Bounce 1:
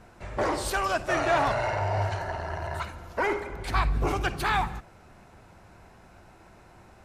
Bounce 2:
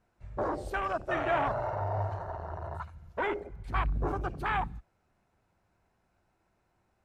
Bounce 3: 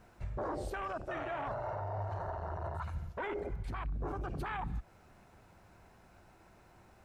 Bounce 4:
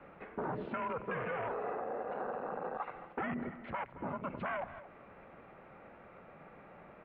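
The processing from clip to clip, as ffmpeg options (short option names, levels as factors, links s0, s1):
-af "afwtdn=0.0355,volume=0.596"
-af "areverse,acompressor=threshold=0.0112:ratio=10,areverse,alimiter=level_in=9.44:limit=0.0631:level=0:latency=1:release=131,volume=0.106,volume=4.47"
-filter_complex "[0:a]acrossover=split=270|1400[s0][s1][s2];[s0]acompressor=threshold=0.00251:ratio=4[s3];[s1]acompressor=threshold=0.00398:ratio=4[s4];[s2]acompressor=threshold=0.00355:ratio=4[s5];[s3][s4][s5]amix=inputs=3:normalize=0,asplit=2[s6][s7];[s7]adelay=221.6,volume=0.178,highshelf=f=4000:g=-4.99[s8];[s6][s8]amix=inputs=2:normalize=0,highpass=f=280:t=q:w=0.5412,highpass=f=280:t=q:w=1.307,lowpass=f=2900:t=q:w=0.5176,lowpass=f=2900:t=q:w=0.7071,lowpass=f=2900:t=q:w=1.932,afreqshift=-170,volume=2.66"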